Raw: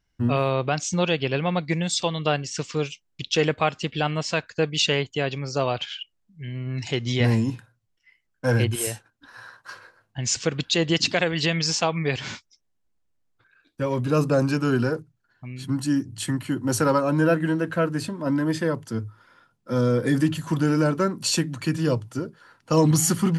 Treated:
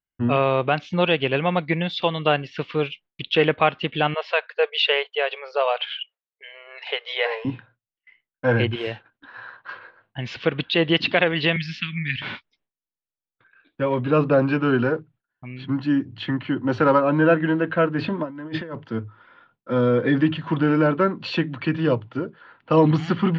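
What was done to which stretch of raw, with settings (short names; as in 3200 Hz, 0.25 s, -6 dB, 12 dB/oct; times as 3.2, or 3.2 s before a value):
4.14–7.45 brick-wall FIR high-pass 410 Hz
11.56–12.22 Chebyshev band-stop 220–1800 Hz, order 3
17.98–18.75 negative-ratio compressor -29 dBFS, ratio -0.5
whole clip: gate with hold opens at -52 dBFS; steep low-pass 3500 Hz 36 dB/oct; low shelf 150 Hz -10 dB; gain +4.5 dB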